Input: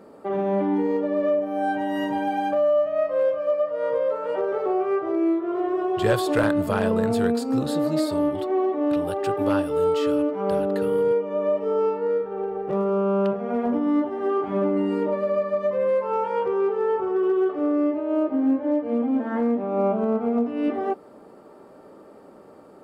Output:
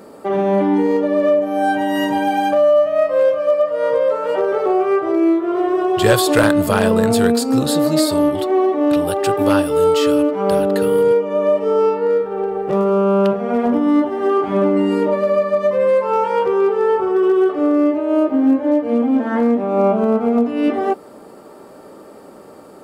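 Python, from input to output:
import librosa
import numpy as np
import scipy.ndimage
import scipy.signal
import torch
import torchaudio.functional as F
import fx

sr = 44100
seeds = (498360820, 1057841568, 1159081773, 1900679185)

y = fx.high_shelf(x, sr, hz=3500.0, db=10.0)
y = y * librosa.db_to_amplitude(7.0)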